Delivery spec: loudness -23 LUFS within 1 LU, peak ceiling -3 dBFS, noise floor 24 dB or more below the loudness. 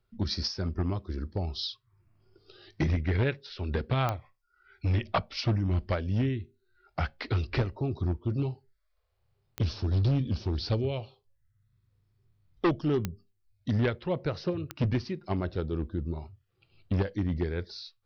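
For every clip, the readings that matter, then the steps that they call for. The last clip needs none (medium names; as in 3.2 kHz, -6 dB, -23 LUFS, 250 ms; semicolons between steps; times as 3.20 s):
clicks found 4; loudness -31.0 LUFS; peak level -16.0 dBFS; loudness target -23.0 LUFS
-> de-click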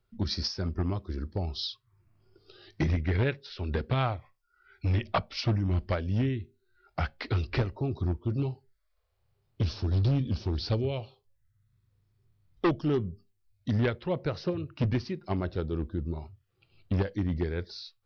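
clicks found 0; loudness -31.0 LUFS; peak level -17.0 dBFS; loudness target -23.0 LUFS
-> trim +8 dB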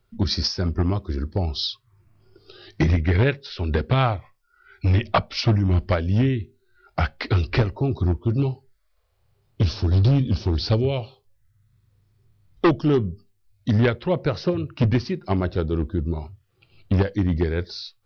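loudness -23.0 LUFS; peak level -9.0 dBFS; noise floor -67 dBFS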